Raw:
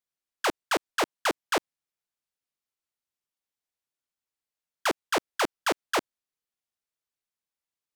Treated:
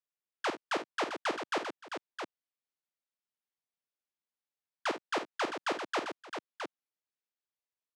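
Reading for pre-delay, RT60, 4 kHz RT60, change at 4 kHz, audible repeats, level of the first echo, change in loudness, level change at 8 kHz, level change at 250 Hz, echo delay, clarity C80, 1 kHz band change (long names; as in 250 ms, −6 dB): no reverb audible, no reverb audible, no reverb audible, −7.0 dB, 3, −10.5 dB, −7.5 dB, −12.0 dB, −5.5 dB, 52 ms, no reverb audible, −5.5 dB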